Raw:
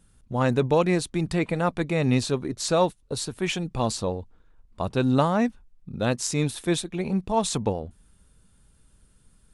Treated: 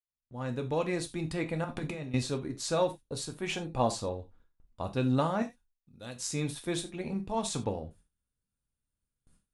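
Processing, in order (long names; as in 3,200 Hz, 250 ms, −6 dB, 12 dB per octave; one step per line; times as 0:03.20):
fade in at the beginning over 1.02 s
0:01.64–0:02.14: compressor whose output falls as the input rises −28 dBFS, ratio −0.5
0:03.49–0:04.01: parametric band 710 Hz +7.5 dB 1.7 octaves
noise gate with hold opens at −45 dBFS
0:05.42–0:06.16: first-order pre-emphasis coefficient 0.8
reverb whose tail is shaped and stops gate 110 ms falling, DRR 5 dB
level −8 dB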